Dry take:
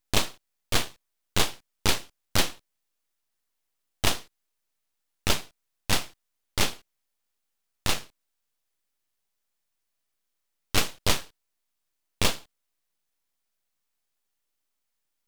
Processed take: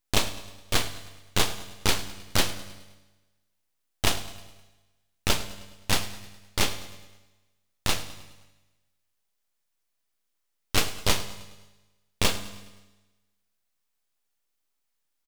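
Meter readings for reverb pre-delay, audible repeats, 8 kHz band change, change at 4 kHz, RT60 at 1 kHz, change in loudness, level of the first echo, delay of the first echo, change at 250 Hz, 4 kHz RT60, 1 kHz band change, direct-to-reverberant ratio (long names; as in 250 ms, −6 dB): 9 ms, 4, +0.5 dB, +0.5 dB, 1.1 s, 0.0 dB, −18.0 dB, 104 ms, +0.5 dB, 1.1 s, +0.5 dB, 10.5 dB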